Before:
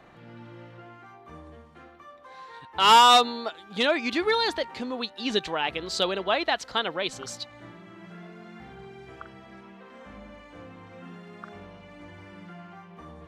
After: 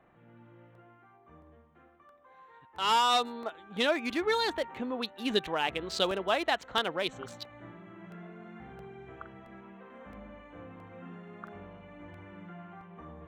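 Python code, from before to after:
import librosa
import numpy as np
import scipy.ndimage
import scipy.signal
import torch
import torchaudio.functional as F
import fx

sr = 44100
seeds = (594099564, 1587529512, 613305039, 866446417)

y = fx.wiener(x, sr, points=9)
y = fx.rider(y, sr, range_db=4, speed_s=0.5)
y = fx.buffer_crackle(y, sr, first_s=0.75, period_s=0.67, block=64, kind='repeat')
y = y * librosa.db_to_amplitude(-6.0)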